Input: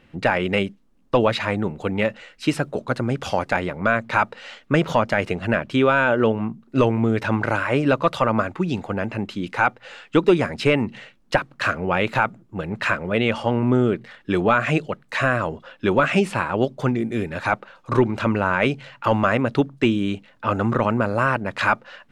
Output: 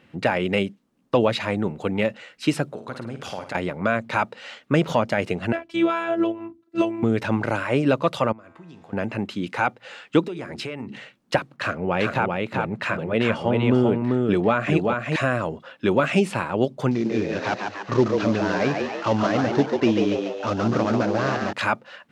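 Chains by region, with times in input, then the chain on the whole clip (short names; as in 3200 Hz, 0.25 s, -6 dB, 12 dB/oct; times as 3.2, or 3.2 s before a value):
2.66–3.55 compressor 2.5:1, threshold -33 dBFS + flutter echo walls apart 9.1 m, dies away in 0.38 s
5.52–7.03 comb 5.2 ms, depth 51% + robotiser 335 Hz + upward expander, over -29 dBFS
8.32–8.93 compressor, threshold -28 dBFS + resonator 83 Hz, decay 1.8 s, mix 80%
10.23–10.96 de-hum 69.54 Hz, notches 6 + compressor 8:1, threshold -28 dBFS
11.56–15.16 high shelf 4100 Hz -7 dB + echo 0.391 s -3.5 dB
16.91–21.53 CVSD 32 kbps + frequency-shifting echo 0.143 s, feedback 51%, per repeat +95 Hz, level -4.5 dB
whole clip: HPF 100 Hz; dynamic EQ 1400 Hz, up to -5 dB, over -31 dBFS, Q 0.94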